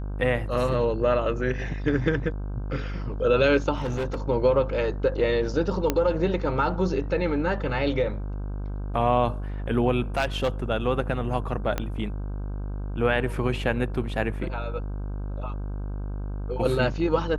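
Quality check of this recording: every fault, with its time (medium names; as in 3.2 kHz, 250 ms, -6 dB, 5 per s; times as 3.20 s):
buzz 50 Hz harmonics 32 -31 dBFS
3.75–4.18 s: clipped -24 dBFS
5.90 s: pop -8 dBFS
10.17–10.49 s: clipped -18.5 dBFS
11.78 s: pop -12 dBFS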